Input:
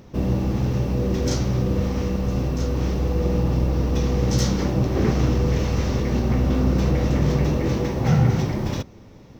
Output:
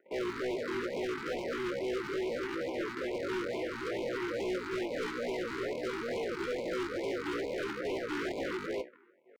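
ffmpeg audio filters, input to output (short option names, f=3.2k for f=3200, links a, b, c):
-af "afwtdn=0.0398,acontrast=42,aresample=11025,acrusher=samples=35:mix=1:aa=0.000001:lfo=1:lforange=56:lforate=3.5,aresample=44100,asoftclip=type=tanh:threshold=-20.5dB,asetrate=85689,aresample=44100,atempo=0.514651,highpass=f=360:w=0.5412,highpass=f=360:w=1.3066,equalizer=f=360:t=q:w=4:g=10,equalizer=f=520:t=q:w=4:g=7,equalizer=f=850:t=q:w=4:g=-7,equalizer=f=1.4k:t=q:w=4:g=7,equalizer=f=2k:t=q:w=4:g=6,lowpass=f=2.3k:w=0.5412,lowpass=f=2.3k:w=1.3066,asoftclip=type=hard:threshold=-28dB,flanger=delay=9.6:depth=3.9:regen=-55:speed=0.26:shape=triangular,afftfilt=real='re*(1-between(b*sr/1024,560*pow(1500/560,0.5+0.5*sin(2*PI*2.3*pts/sr))/1.41,560*pow(1500/560,0.5+0.5*sin(2*PI*2.3*pts/sr))*1.41))':imag='im*(1-between(b*sr/1024,560*pow(1500/560,0.5+0.5*sin(2*PI*2.3*pts/sr))/1.41,560*pow(1500/560,0.5+0.5*sin(2*PI*2.3*pts/sr))*1.41))':win_size=1024:overlap=0.75"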